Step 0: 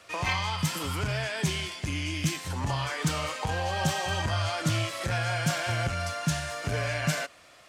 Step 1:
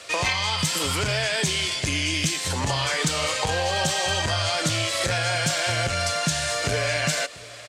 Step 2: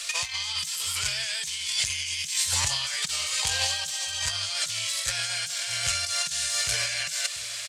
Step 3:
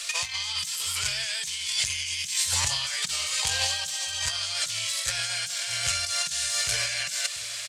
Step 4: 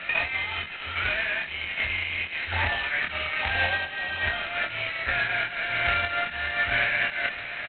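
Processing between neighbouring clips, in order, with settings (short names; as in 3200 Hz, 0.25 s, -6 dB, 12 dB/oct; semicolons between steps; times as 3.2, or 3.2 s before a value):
graphic EQ 500/2000/4000/8000 Hz +7/+4/+8/+10 dB; compressor, threshold -25 dBFS, peak gain reduction 8 dB; echo 0.69 s -20.5 dB; gain +4.5 dB
passive tone stack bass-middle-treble 10-0-10; negative-ratio compressor -33 dBFS, ratio -0.5; high shelf 2800 Hz +8.5 dB
de-hum 49.91 Hz, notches 7
fixed phaser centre 700 Hz, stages 8; doubler 26 ms -3.5 dB; gain +9 dB; G.726 16 kbps 8000 Hz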